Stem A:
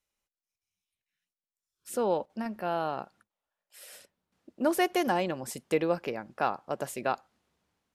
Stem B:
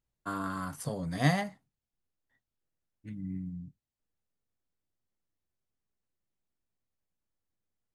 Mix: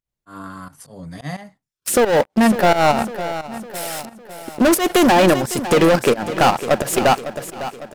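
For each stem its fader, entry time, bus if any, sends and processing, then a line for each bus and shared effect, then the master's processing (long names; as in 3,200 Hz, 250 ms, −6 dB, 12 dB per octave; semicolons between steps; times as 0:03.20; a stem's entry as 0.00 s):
−3.0 dB, 0.00 s, no send, echo send −12.5 dB, automatic gain control gain up to 12 dB; leveller curve on the samples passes 5; output level in coarse steps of 9 dB
+1.5 dB, 0.00 s, no send, no echo send, volume swells 126 ms; automatic ducking −24 dB, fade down 0.40 s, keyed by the first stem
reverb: not used
echo: repeating echo 554 ms, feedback 51%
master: fake sidechain pumping 88 BPM, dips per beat 1, −14 dB, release 188 ms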